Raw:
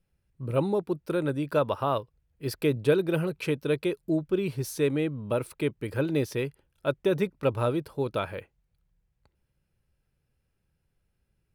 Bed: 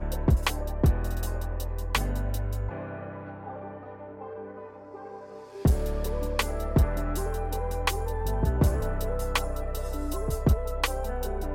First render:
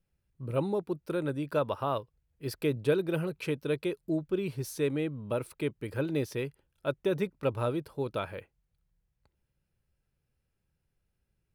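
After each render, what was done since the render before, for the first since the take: trim -4 dB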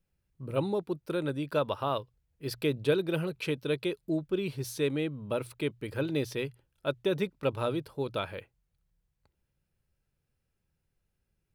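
hum notches 60/120 Hz; dynamic bell 3.6 kHz, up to +6 dB, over -56 dBFS, Q 1.4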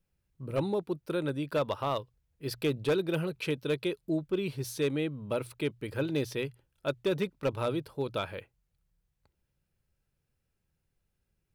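hard clipper -22 dBFS, distortion -19 dB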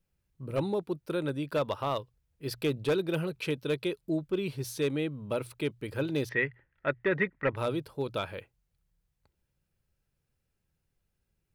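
6.29–7.56 s: resonant low-pass 1.9 kHz, resonance Q 10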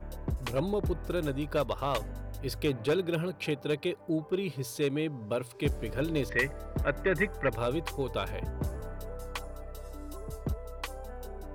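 add bed -11 dB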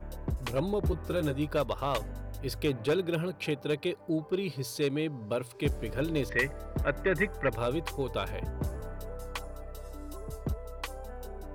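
0.80–1.48 s: doubling 13 ms -5 dB; 3.86–5.34 s: peaking EQ 4.5 kHz +9 dB 0.2 oct

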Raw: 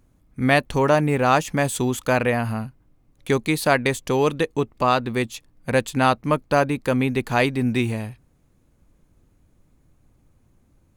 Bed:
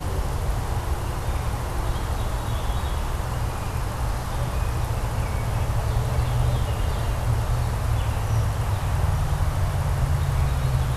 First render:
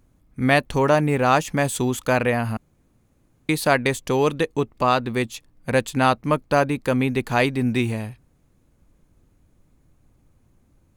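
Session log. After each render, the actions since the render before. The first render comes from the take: 2.57–3.49 s: room tone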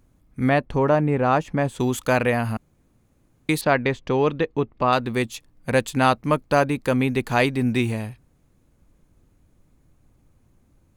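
0.49–1.80 s: low-pass 1.2 kHz 6 dB/octave; 3.61–4.93 s: distance through air 210 m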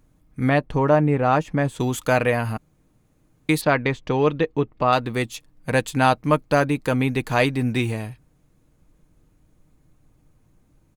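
comb 6.5 ms, depth 31%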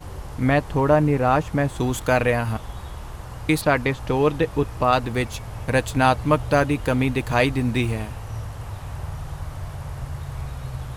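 add bed -9 dB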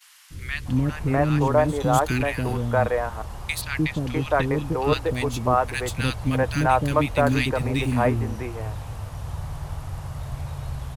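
three bands offset in time highs, lows, mids 300/650 ms, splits 360/1700 Hz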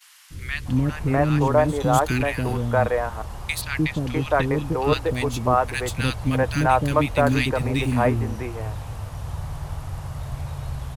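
trim +1 dB

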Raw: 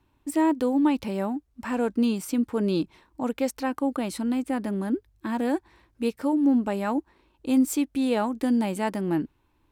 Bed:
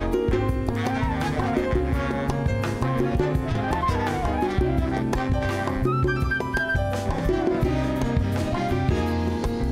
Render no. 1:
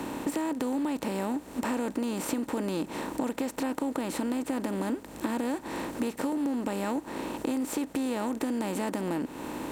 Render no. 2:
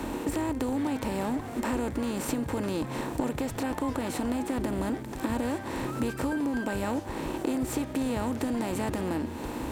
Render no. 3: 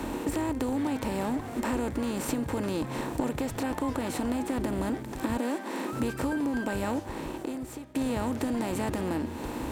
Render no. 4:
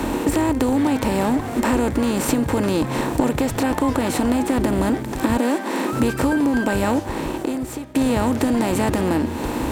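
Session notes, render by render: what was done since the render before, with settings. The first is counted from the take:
spectral levelling over time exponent 0.4; compression 6:1, threshold -28 dBFS, peak gain reduction 13 dB
add bed -14.5 dB
5.38–5.93 s: steep high-pass 190 Hz 48 dB/octave; 6.92–7.95 s: fade out, to -16 dB
trim +10.5 dB

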